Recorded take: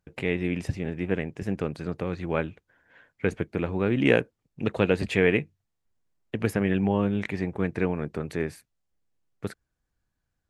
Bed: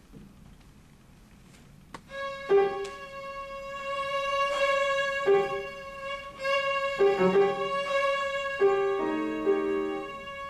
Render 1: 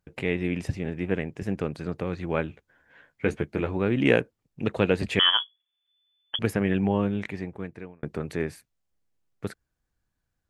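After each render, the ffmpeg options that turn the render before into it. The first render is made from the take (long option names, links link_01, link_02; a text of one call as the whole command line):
ffmpeg -i in.wav -filter_complex "[0:a]asettb=1/sr,asplit=3[link_01][link_02][link_03];[link_01]atrim=end=2.484[link_04];[link_02]atrim=start=2.48:end=3.77,asetpts=PTS-STARTPTS,afade=type=in:duration=0.004:curve=qsin,afade=type=out:start_time=1.286:duration=0.004:curve=qsin,asplit=2[link_05][link_06];[link_06]adelay=14,volume=-6dB[link_07];[link_05][link_07]amix=inputs=2:normalize=0,atrim=end_sample=56889[link_08];[link_03]atrim=start=3.766[link_09];[link_04][link_08]acrossfade=duration=0.004:curve1=hsin:curve2=qsin[link_10];[link_10][link_09]acrossfade=duration=0.004:curve1=qsin:curve2=hsin,asettb=1/sr,asplit=3[link_11][link_12][link_13];[link_11]atrim=end=5.194[link_14];[link_12]atrim=start=5.19:end=6.39,asetpts=PTS-STARTPTS,afade=type=in:duration=0.004:curve=qsin,afade=type=out:start_time=1.196:duration=0.004:curve=qsin,lowpass=frequency=3000:width_type=q:width=0.5098,lowpass=frequency=3000:width_type=q:width=0.6013,lowpass=frequency=3000:width_type=q:width=0.9,lowpass=frequency=3000:width_type=q:width=2.563,afreqshift=-3500[link_15];[link_13]atrim=start=6.386[link_16];[link_14][link_15]acrossfade=duration=0.004:curve1=hsin:curve2=qsin[link_17];[link_17][link_16]acrossfade=duration=0.004:curve1=qsin:curve2=hsin,asplit=2[link_18][link_19];[link_18]atrim=end=8.03,asetpts=PTS-STARTPTS,afade=type=out:start_time=6.97:duration=1.06[link_20];[link_19]atrim=start=8.03,asetpts=PTS-STARTPTS,afade=type=in:duration=0.004:curve=hsin[link_21];[link_20][link_21]concat=n=2:v=0:a=1" out.wav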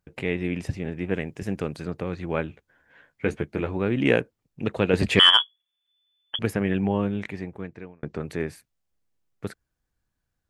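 ffmpeg -i in.wav -filter_complex "[0:a]asettb=1/sr,asplit=3[link_01][link_02][link_03];[link_01]atrim=end=1.134[link_04];[link_02]atrim=start=1.13:end=1.86,asetpts=PTS-STARTPTS,afade=type=in:duration=0.004:curve=qsin,afade=type=out:start_time=0.726:duration=0.004:curve=qsin,highshelf=frequency=4100:gain=7[link_05];[link_03]atrim=start=1.856[link_06];[link_04][link_05]acrossfade=duration=0.004:curve1=hsin:curve2=qsin[link_07];[link_07][link_06]acrossfade=duration=0.004:curve1=qsin:curve2=hsin,asettb=1/sr,asplit=3[link_08][link_09][link_10];[link_08]atrim=end=4.934[link_11];[link_09]atrim=start=4.93:end=5.42,asetpts=PTS-STARTPTS,afade=type=in:duration=0.004:curve=qsin,afade=type=out:start_time=0.486:duration=0.004:curve=qsin,acontrast=56[link_12];[link_10]atrim=start=5.416[link_13];[link_11][link_12]acrossfade=duration=0.004:curve1=hsin:curve2=qsin[link_14];[link_14][link_13]acrossfade=duration=0.004:curve1=qsin:curve2=hsin,asettb=1/sr,asplit=3[link_15][link_16][link_17];[link_15]atrim=end=7.614[link_18];[link_16]atrim=start=7.61:end=8.19,asetpts=PTS-STARTPTS,afade=type=in:duration=0.004:curve=qsin,afade=type=out:start_time=0.576:duration=0.004:curve=qsin,lowpass=frequency=7300:width=0.5412,lowpass=frequency=7300:width=1.3066[link_19];[link_17]atrim=start=8.186[link_20];[link_18][link_19]acrossfade=duration=0.004:curve1=hsin:curve2=qsin[link_21];[link_21][link_20]acrossfade=duration=0.004:curve1=qsin:curve2=hsin" out.wav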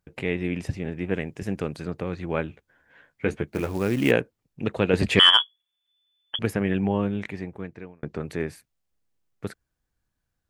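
ffmpeg -i in.wav -filter_complex "[0:a]asplit=3[link_01][link_02][link_03];[link_01]afade=type=out:start_time=3.47:duration=0.02[link_04];[link_02]acrusher=bits=5:mode=log:mix=0:aa=0.000001,afade=type=in:start_time=3.47:duration=0.02,afade=type=out:start_time=4.1:duration=0.02[link_05];[link_03]afade=type=in:start_time=4.1:duration=0.02[link_06];[link_04][link_05][link_06]amix=inputs=3:normalize=0" out.wav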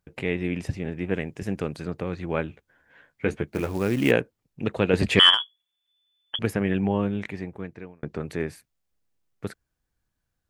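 ffmpeg -i in.wav -filter_complex "[0:a]asettb=1/sr,asplit=3[link_01][link_02][link_03];[link_01]atrim=end=5.344[link_04];[link_02]atrim=start=5.34:end=6.44,asetpts=PTS-STARTPTS,afade=type=in:duration=0.004:curve=qsin,afade=type=out:start_time=1.096:duration=0.004:curve=qsin,acompressor=threshold=-20dB:ratio=6:attack=3.2:release=140:knee=1:detection=peak[link_05];[link_03]atrim=start=6.436[link_06];[link_04][link_05]acrossfade=duration=0.004:curve1=hsin:curve2=qsin[link_07];[link_07][link_06]acrossfade=duration=0.004:curve1=qsin:curve2=hsin" out.wav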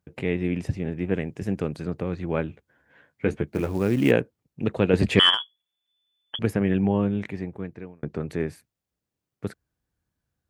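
ffmpeg -i in.wav -af "highpass=62,tiltshelf=frequency=640:gain=3" out.wav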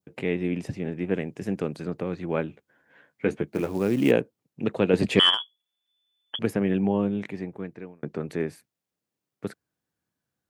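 ffmpeg -i in.wav -af "adynamicequalizer=threshold=0.00708:dfrequency=1700:dqfactor=1.3:tfrequency=1700:tqfactor=1.3:attack=5:release=100:ratio=0.375:range=3:mode=cutabove:tftype=bell,highpass=160" out.wav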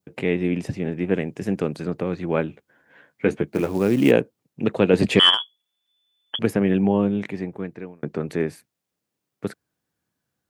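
ffmpeg -i in.wav -af "volume=4.5dB,alimiter=limit=-3dB:level=0:latency=1" out.wav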